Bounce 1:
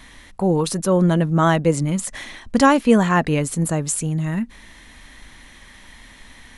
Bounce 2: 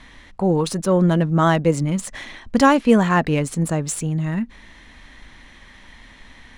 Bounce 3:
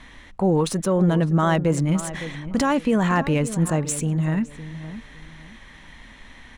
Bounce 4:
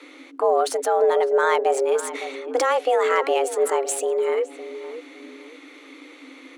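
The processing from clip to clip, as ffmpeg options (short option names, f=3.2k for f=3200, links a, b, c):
-af "adynamicsmooth=sensitivity=4:basefreq=6k"
-filter_complex "[0:a]equalizer=f=4.7k:t=o:w=0.4:g=-4,alimiter=limit=-11.5dB:level=0:latency=1:release=18,asplit=2[a][b];[b]adelay=561,lowpass=f=1.9k:p=1,volume=-13dB,asplit=2[c][d];[d]adelay=561,lowpass=f=1.9k:p=1,volume=0.26,asplit=2[e][f];[f]adelay=561,lowpass=f=1.9k:p=1,volume=0.26[g];[a][c][e][g]amix=inputs=4:normalize=0"
-af "afreqshift=260"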